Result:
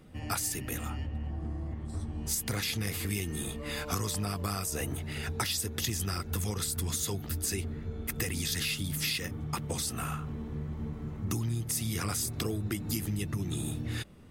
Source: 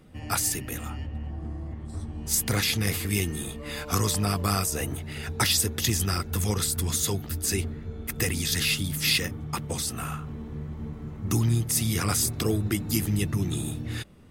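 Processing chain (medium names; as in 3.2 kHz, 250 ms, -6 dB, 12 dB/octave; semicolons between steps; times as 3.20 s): compression, threshold -28 dBFS, peak gain reduction 9 dB; trim -1 dB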